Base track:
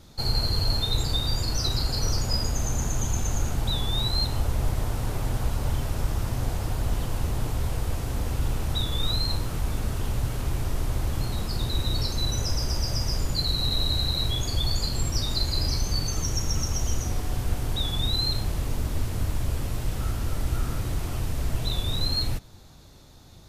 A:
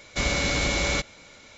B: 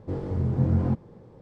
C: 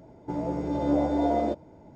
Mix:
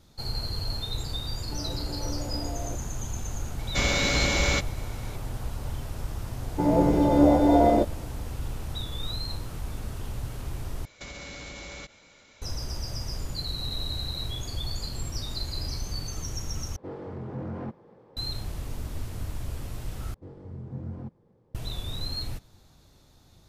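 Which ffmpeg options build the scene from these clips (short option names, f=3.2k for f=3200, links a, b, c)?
-filter_complex "[3:a]asplit=2[a][b];[1:a]asplit=2[c][d];[2:a]asplit=2[e][f];[0:a]volume=-7dB[g];[a]alimiter=limit=-20.5dB:level=0:latency=1:release=71[h];[b]dynaudnorm=f=110:g=5:m=16dB[i];[d]acompressor=threshold=-31dB:ratio=6:attack=3.2:release=140:knee=1:detection=peak[j];[e]asplit=2[k][l];[l]highpass=f=720:p=1,volume=22dB,asoftclip=type=tanh:threshold=-12dB[m];[k][m]amix=inputs=2:normalize=0,lowpass=f=2k:p=1,volume=-6dB[n];[g]asplit=4[o][p][q][r];[o]atrim=end=10.854[s];[j]atrim=end=1.57,asetpts=PTS-STARTPTS,volume=-6.5dB[t];[p]atrim=start=12.416:end=16.764[u];[n]atrim=end=1.41,asetpts=PTS-STARTPTS,volume=-13.5dB[v];[q]atrim=start=18.166:end=20.144[w];[f]atrim=end=1.41,asetpts=PTS-STARTPTS,volume=-14dB[x];[r]atrim=start=21.546[y];[h]atrim=end=1.95,asetpts=PTS-STARTPTS,volume=-9.5dB,afade=t=in:d=0.004:c=hsin,afade=t=out:st=1.946:d=0.004:c=hsin,adelay=1230[z];[c]atrim=end=1.57,asetpts=PTS-STARTPTS,afade=t=in:d=0.004:c=hsin,afade=t=out:st=1.566:d=0.004:c=hsin,adelay=3590[aa];[i]atrim=end=1.95,asetpts=PTS-STARTPTS,volume=-6dB,afade=t=in:d=0.004:c=hsin,afade=t=out:st=1.946:d=0.004:c=hsin,adelay=6300[ab];[s][t]acrossfade=d=0.004:c1=hsin:c2=hsin[ac];[ac][u]acrossfade=d=0.004:c1=hsin:c2=hsin[ad];[ad][v]acrossfade=d=0.004:c1=hsin:c2=hsin[ae];[ae][w]acrossfade=d=0.004:c1=hsin:c2=hsin[af];[af][x]acrossfade=d=0.004:c1=hsin:c2=hsin[ag];[ag][y]acrossfade=d=0.004:c1=hsin:c2=hsin[ah];[ah][z][aa][ab]amix=inputs=4:normalize=0"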